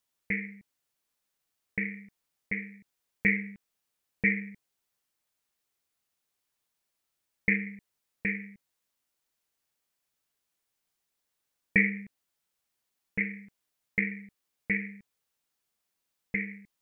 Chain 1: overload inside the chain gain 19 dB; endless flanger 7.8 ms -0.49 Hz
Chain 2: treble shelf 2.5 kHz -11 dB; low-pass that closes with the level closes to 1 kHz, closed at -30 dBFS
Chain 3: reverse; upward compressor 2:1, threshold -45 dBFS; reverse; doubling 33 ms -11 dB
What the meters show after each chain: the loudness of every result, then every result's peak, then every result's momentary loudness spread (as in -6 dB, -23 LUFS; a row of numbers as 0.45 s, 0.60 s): -35.0 LUFS, -37.5 LUFS, -31.0 LUFS; -15.5 dBFS, -12.5 dBFS, -8.5 dBFS; 18 LU, 18 LU, 18 LU